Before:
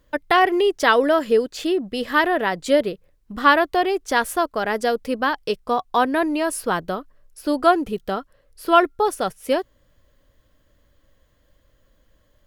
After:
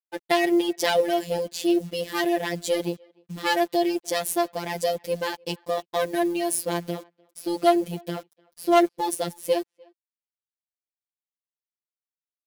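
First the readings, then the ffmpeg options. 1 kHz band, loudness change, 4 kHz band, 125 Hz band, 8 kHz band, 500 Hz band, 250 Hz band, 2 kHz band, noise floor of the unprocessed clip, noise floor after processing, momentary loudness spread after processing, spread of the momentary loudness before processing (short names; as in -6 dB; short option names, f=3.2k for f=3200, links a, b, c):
-7.5 dB, -4.5 dB, -2.5 dB, +3.0 dB, +3.0 dB, -4.0 dB, -2.0 dB, -9.0 dB, -62 dBFS, under -85 dBFS, 12 LU, 12 LU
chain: -filter_complex "[0:a]aeval=exprs='if(lt(val(0),0),0.447*val(0),val(0))':c=same,highpass=f=89:w=0.5412,highpass=f=89:w=1.3066,equalizer=f=1.3k:t=o:w=0.98:g=-15,acontrast=36,acrusher=bits=7:mix=0:aa=0.000001,afftfilt=real='hypot(re,im)*cos(PI*b)':imag='0':win_size=1024:overlap=0.75,asplit=2[a][b];[b]adelay=300,highpass=300,lowpass=3.4k,asoftclip=type=hard:threshold=-12dB,volume=-28dB[c];[a][c]amix=inputs=2:normalize=0,adynamicequalizer=threshold=0.00891:dfrequency=5500:dqfactor=0.7:tfrequency=5500:tqfactor=0.7:attack=5:release=100:ratio=0.375:range=2:mode=boostabove:tftype=highshelf"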